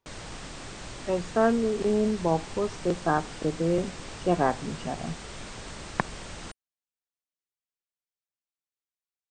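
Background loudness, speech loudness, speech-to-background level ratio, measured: −40.5 LKFS, −28.0 LKFS, 12.5 dB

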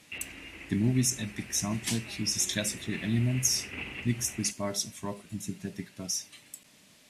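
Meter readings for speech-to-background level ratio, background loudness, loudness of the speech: 12.0 dB, −42.5 LKFS, −30.5 LKFS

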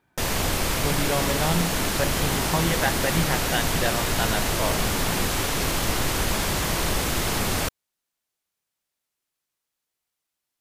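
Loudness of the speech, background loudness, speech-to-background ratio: −29.0 LKFS, −24.5 LKFS, −4.5 dB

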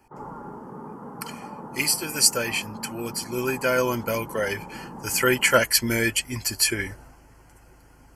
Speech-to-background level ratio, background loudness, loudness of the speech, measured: 16.5 dB, −39.5 LKFS, −23.0 LKFS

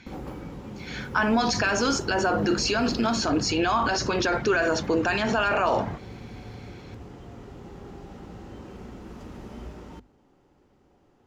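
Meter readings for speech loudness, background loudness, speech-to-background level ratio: −24.0 LKFS, −40.5 LKFS, 16.5 dB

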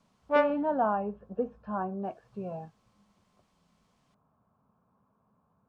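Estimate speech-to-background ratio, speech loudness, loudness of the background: −4.0 dB, −33.0 LKFS, −29.0 LKFS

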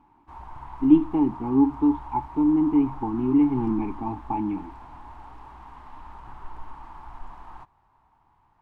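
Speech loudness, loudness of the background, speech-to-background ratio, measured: −23.0 LKFS, −43.0 LKFS, 20.0 dB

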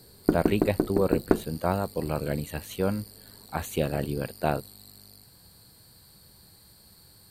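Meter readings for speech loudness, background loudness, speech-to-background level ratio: −30.0 LKFS, −28.0 LKFS, −2.0 dB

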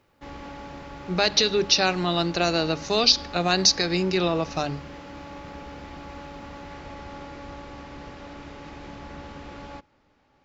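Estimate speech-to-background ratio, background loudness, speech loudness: 18.5 dB, −40.5 LKFS, −22.0 LKFS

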